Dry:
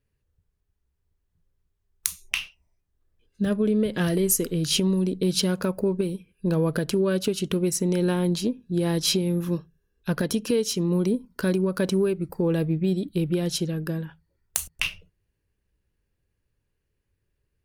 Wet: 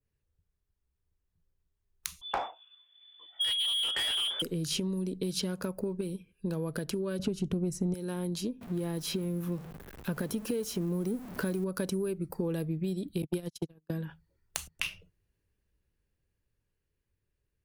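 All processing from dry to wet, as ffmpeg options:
-filter_complex "[0:a]asettb=1/sr,asplit=3[a][b][c];[a]atrim=end=2.214[d];[b]atrim=start=2.21:end=4.42,asetpts=PTS-STARTPTS,afade=t=in:d=0.004:c=qsin,afade=t=out:st=2.206:d=0.004:c=qsin,lowpass=f=3k:t=q:w=0.5098,lowpass=f=3k:t=q:w=0.6013,lowpass=f=3k:t=q:w=0.9,lowpass=f=3k:t=q:w=2.563,afreqshift=-3500,asplit=2[e][f];[f]highpass=f=720:p=1,volume=26dB,asoftclip=type=tanh:threshold=-7.5dB[g];[e][g]amix=inputs=2:normalize=0,lowpass=f=1.5k:p=1,volume=-6dB[h];[c]atrim=start=4.416[i];[d][h]acrossfade=d=0.004:c1=hsin:c2=qsin[j];[j][i]acrossfade=d=0.004:c1=qsin:c2=hsin,asettb=1/sr,asplit=3[k][l][m];[k]atrim=end=7.194[n];[l]atrim=start=7.19:end=7.94,asetpts=PTS-STARTPTS,afade=t=in:d=0.004:c=qsin,afade=t=out:st=0.746:d=0.004:c=qsin,aemphasis=mode=reproduction:type=riaa,acontrast=37[o];[m]atrim=start=7.936[p];[n][o]acrossfade=d=0.004:c1=hsin:c2=qsin[q];[q][p]acrossfade=d=0.004:c1=qsin:c2=hsin,asettb=1/sr,asplit=3[r][s][t];[r]atrim=end=8.614[u];[s]atrim=start=8.61:end=11.64,asetpts=PTS-STARTPTS,afade=t=in:d=0.004:c=qsin,afade=t=out:st=3.026:d=0.004:c=qsin,aeval=exprs='val(0)+0.5*0.0178*sgn(val(0))':c=same,equalizer=f=5.9k:t=o:w=2:g=-8.5[v];[t]atrim=start=11.636[w];[u][v]acrossfade=d=0.004:c1=hsin:c2=qsin[x];[x][w]acrossfade=d=0.004:c1=qsin:c2=hsin,asettb=1/sr,asplit=3[y][z][aa];[y]atrim=end=13.224[ab];[z]atrim=start=13.22:end=13.9,asetpts=PTS-STARTPTS,afade=t=in:d=0.004:c=qsin,afade=t=out:st=0.676:d=0.004:c=qsin,agate=range=-52dB:threshold=-24dB:ratio=16:release=100:detection=peak,acontrast=32[ac];[aa]atrim=start=13.896[ad];[ab][ac]acrossfade=d=0.004:c1=hsin:c2=qsin[ae];[ae][ad]acrossfade=d=0.004:c1=qsin:c2=hsin,dynaudnorm=f=740:g=7:m=11.5dB,adynamicequalizer=threshold=0.0141:dfrequency=3200:dqfactor=0.84:tfrequency=3200:tqfactor=0.84:attack=5:release=100:ratio=0.375:range=2:mode=cutabove:tftype=bell,acrossover=split=84|5400[af][ag][ah];[af]acompressor=threshold=-50dB:ratio=4[ai];[ag]acompressor=threshold=-25dB:ratio=4[aj];[ah]acompressor=threshold=-33dB:ratio=4[ak];[ai][aj][ak]amix=inputs=3:normalize=0,volume=-6dB"

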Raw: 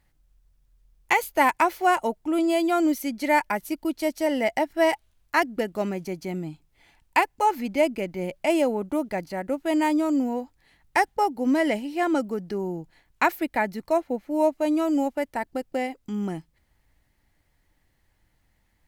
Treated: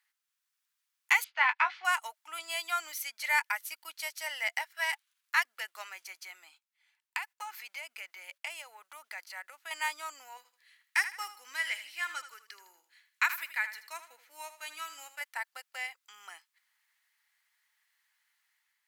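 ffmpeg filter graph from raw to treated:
-filter_complex "[0:a]asettb=1/sr,asplit=3[a][b][c];[a]atrim=end=1.244[d];[b]atrim=start=1.24:end=1.85,asetpts=PTS-STARTPTS,afade=t=in:d=0.004:c=qsin,afade=t=out:st=0.606:d=0.004:c=qsin,lowpass=f=4k:w=0.5412,lowpass=f=4k:w=1.3066,asplit=2[e][f];[f]adelay=20,volume=-8dB[g];[e][g]amix=inputs=2:normalize=0,atrim=end_sample=26901[h];[c]atrim=start=1.846[i];[d][h]acrossfade=d=0.004:c1=hsin:c2=qsin[j];[j][i]acrossfade=d=0.004:c1=qsin:c2=hsin,asettb=1/sr,asplit=3[k][l][m];[k]atrim=end=4.614[n];[l]atrim=start=4.61:end=5.45,asetpts=PTS-STARTPTS,afade=t=in:d=0.004:c=qsin,afade=t=out:st=0.836:d=0.004:c=qsin,aeval=exprs='if(lt(val(0),0),0.708*val(0),val(0))':c=same,highpass=660[o];[m]atrim=start=5.446[p];[n][o]acrossfade=d=0.004:c1=hsin:c2=qsin[q];[q][p]acrossfade=d=0.004:c1=qsin:c2=hsin,asettb=1/sr,asplit=3[r][s][t];[r]atrim=end=6.114[u];[s]atrim=start=6.11:end=9.71,asetpts=PTS-STARTPTS,afade=t=in:d=0.004:c=qsin,afade=t=out:st=3.596:d=0.004:c=qsin,agate=range=-12dB:threshold=-51dB:ratio=16:release=100:detection=peak,acompressor=threshold=-26dB:ratio=8:attack=3.2:release=140:knee=1:detection=peak[v];[t]atrim=start=9.706[w];[u][v]acrossfade=d=0.004:c1=hsin:c2=qsin[x];[x][w]acrossfade=d=0.004:c1=qsin:c2=hsin,asettb=1/sr,asplit=3[y][z][aa];[y]atrim=end=10.374[ab];[z]atrim=start=10.37:end=15.21,asetpts=PTS-STARTPTS,afade=t=in:d=0.004:c=qsin,afade=t=out:st=4.836:d=0.004:c=qsin,equalizer=f=740:t=o:w=0.86:g=-11.5,aecho=1:1:79|158|237:0.251|0.0854|0.029,atrim=end_sample=213444[ac];[aa]atrim=start=15.206[ad];[ab][ac]acrossfade=d=0.004:c1=hsin:c2=qsin[ae];[ae][ad]acrossfade=d=0.004:c1=qsin:c2=hsin,highpass=f=1.2k:w=0.5412,highpass=f=1.2k:w=1.3066,dynaudnorm=f=110:g=7:m=3.5dB,volume=-4dB"

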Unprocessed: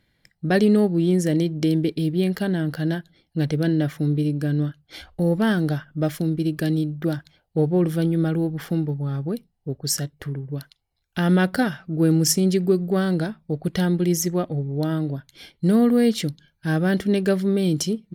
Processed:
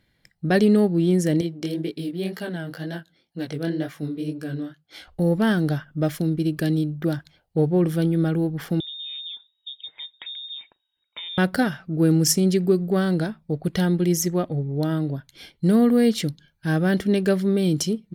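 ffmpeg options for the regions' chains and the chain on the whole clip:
-filter_complex "[0:a]asettb=1/sr,asplit=3[a][b][c];[a]atrim=end=1.414[d];[b]atrim=start=1.41:end=5.08,asetpts=PTS-STARTPTS,afade=t=in:d=0.004:c=qsin,afade=t=out:st=3.666:d=0.004:c=qsin,highpass=f=260:p=1,flanger=delay=16.5:depth=7.7:speed=2[e];[c]atrim=start=5.076[f];[d][e]acrossfade=d=0.004:c1=hsin:c2=qsin[g];[g][f]acrossfade=d=0.004:c1=qsin:c2=hsin,asettb=1/sr,asplit=3[h][i][j];[h]atrim=end=8.804[k];[i]atrim=start=8.8:end=11.38,asetpts=PTS-STARTPTS,afade=t=in:d=0.004:c=qsin,afade=t=out:st=2.576:d=0.004:c=qsin,acompressor=threshold=-32dB:ratio=12:attack=3.2:release=140:knee=1:detection=peak,lowpass=f=3.2k:t=q:w=0.5098,lowpass=f=3.2k:t=q:w=0.6013,lowpass=f=3.2k:t=q:w=0.9,lowpass=f=3.2k:t=q:w=2.563,afreqshift=-3800[l];[j]atrim=start=11.376[m];[k][l]acrossfade=d=0.004:c1=hsin:c2=qsin[n];[n][m]acrossfade=d=0.004:c1=qsin:c2=hsin"

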